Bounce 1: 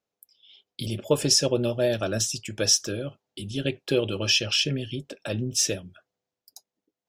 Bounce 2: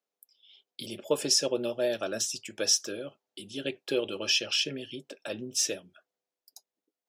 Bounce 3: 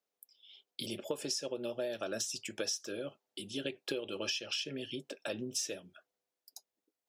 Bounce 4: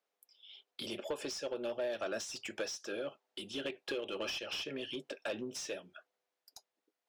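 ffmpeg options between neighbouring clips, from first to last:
-af "highpass=280,volume=0.631"
-af "acompressor=threshold=0.0224:ratio=12"
-filter_complex "[0:a]asplit=2[s0][s1];[s1]highpass=f=720:p=1,volume=7.94,asoftclip=type=tanh:threshold=0.0891[s2];[s0][s2]amix=inputs=2:normalize=0,lowpass=f=2100:p=1,volume=0.501,volume=0.562"

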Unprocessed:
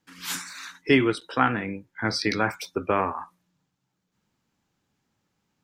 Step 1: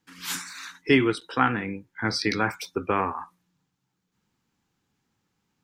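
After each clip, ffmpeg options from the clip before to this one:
-af "equalizer=f=610:w=6.4:g=-9"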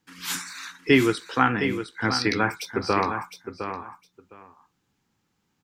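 -af "aecho=1:1:710|1420:0.355|0.0568,volume=1.19"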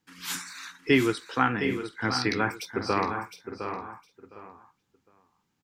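-filter_complex "[0:a]asplit=2[s0][s1];[s1]adelay=758,volume=0.282,highshelf=f=4000:g=-17.1[s2];[s0][s2]amix=inputs=2:normalize=0,volume=0.668"

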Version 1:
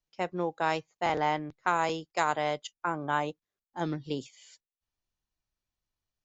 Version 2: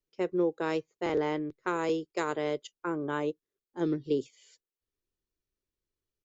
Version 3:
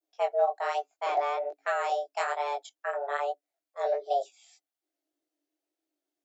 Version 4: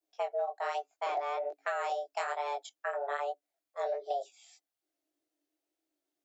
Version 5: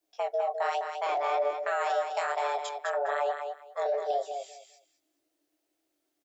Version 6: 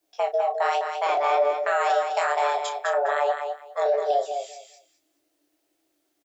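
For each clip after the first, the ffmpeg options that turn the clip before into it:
-af "firequalizer=gain_entry='entry(190,0);entry(400,12);entry(730,-9);entry(1100,-3)':delay=0.05:min_phase=1,volume=0.794"
-af "adynamicequalizer=threshold=0.00316:dfrequency=2800:dqfactor=0.79:tfrequency=2800:tqfactor=0.79:attack=5:release=100:ratio=0.375:range=2:mode=cutabove:tftype=bell,afreqshift=280,flanger=delay=18.5:depth=5.3:speed=1.2,volume=1.58"
-af "acompressor=threshold=0.0282:ratio=4"
-filter_complex "[0:a]alimiter=level_in=1.68:limit=0.0631:level=0:latency=1:release=15,volume=0.596,asplit=2[s0][s1];[s1]aecho=0:1:206|412|618:0.473|0.0899|0.0171[s2];[s0][s2]amix=inputs=2:normalize=0,volume=2.11"
-filter_complex "[0:a]asplit=2[s0][s1];[s1]adelay=34,volume=0.299[s2];[s0][s2]amix=inputs=2:normalize=0,volume=2"

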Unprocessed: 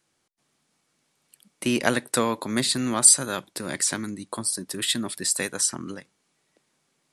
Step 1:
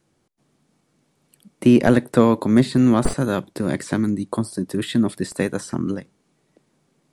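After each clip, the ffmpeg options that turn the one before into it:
-filter_complex "[0:a]aeval=exprs='clip(val(0),-1,0.251)':c=same,acrossover=split=3000[s0][s1];[s1]acompressor=threshold=0.02:ratio=4:attack=1:release=60[s2];[s0][s2]amix=inputs=2:normalize=0,tiltshelf=f=730:g=7.5,volume=2"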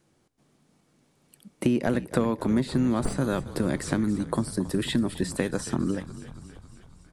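-filter_complex "[0:a]acompressor=threshold=0.0794:ratio=4,asplit=8[s0][s1][s2][s3][s4][s5][s6][s7];[s1]adelay=275,afreqshift=-56,volume=0.188[s8];[s2]adelay=550,afreqshift=-112,volume=0.123[s9];[s3]adelay=825,afreqshift=-168,volume=0.0794[s10];[s4]adelay=1100,afreqshift=-224,volume=0.0519[s11];[s5]adelay=1375,afreqshift=-280,volume=0.0335[s12];[s6]adelay=1650,afreqshift=-336,volume=0.0219[s13];[s7]adelay=1925,afreqshift=-392,volume=0.0141[s14];[s0][s8][s9][s10][s11][s12][s13][s14]amix=inputs=8:normalize=0"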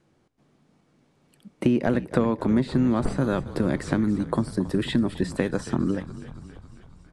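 -af "aemphasis=mode=reproduction:type=50fm,volume=1.26"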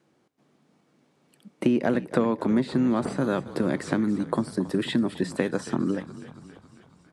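-af "highpass=170"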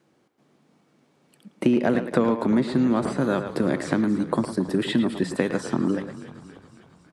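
-filter_complex "[0:a]asplit=2[s0][s1];[s1]adelay=110,highpass=300,lowpass=3400,asoftclip=type=hard:threshold=0.141,volume=0.398[s2];[s0][s2]amix=inputs=2:normalize=0,volume=1.26"

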